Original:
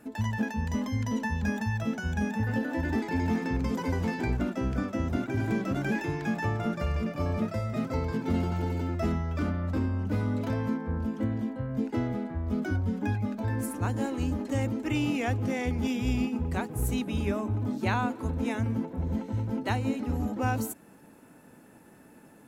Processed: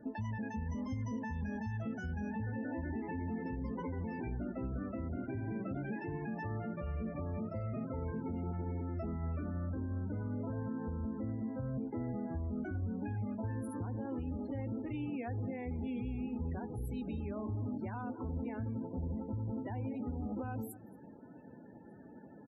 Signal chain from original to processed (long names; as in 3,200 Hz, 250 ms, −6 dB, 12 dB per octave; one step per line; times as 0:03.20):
downward compressor 3 to 1, threshold −36 dBFS, peak gain reduction 10 dB
single-tap delay 232 ms −19.5 dB
brickwall limiter −32 dBFS, peak gain reduction 7.5 dB
hum removal 154.2 Hz, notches 28
spectral peaks only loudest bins 32
parametric band 3,800 Hz −8 dB 2.3 octaves
level +1.5 dB